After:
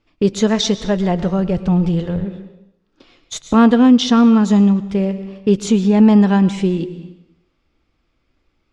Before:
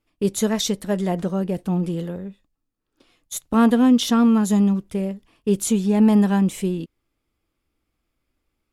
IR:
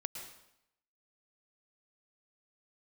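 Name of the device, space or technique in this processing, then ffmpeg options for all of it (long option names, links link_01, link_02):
compressed reverb return: -filter_complex "[0:a]asplit=2[link_01][link_02];[1:a]atrim=start_sample=2205[link_03];[link_02][link_03]afir=irnorm=-1:irlink=0,acompressor=threshold=-29dB:ratio=6,volume=2dB[link_04];[link_01][link_04]amix=inputs=2:normalize=0,asplit=3[link_05][link_06][link_07];[link_05]afade=type=out:start_time=0.79:duration=0.02[link_08];[link_06]asubboost=boost=9:cutoff=110,afade=type=in:start_time=0.79:duration=0.02,afade=type=out:start_time=2.24:duration=0.02[link_09];[link_07]afade=type=in:start_time=2.24:duration=0.02[link_10];[link_08][link_09][link_10]amix=inputs=3:normalize=0,lowpass=frequency=5800:width=0.5412,lowpass=frequency=5800:width=1.3066,volume=3.5dB"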